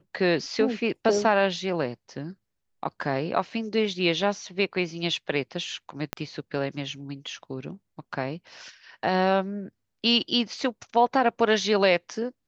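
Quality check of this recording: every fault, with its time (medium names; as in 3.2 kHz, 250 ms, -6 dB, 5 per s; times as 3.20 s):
6.13 s: pop -12 dBFS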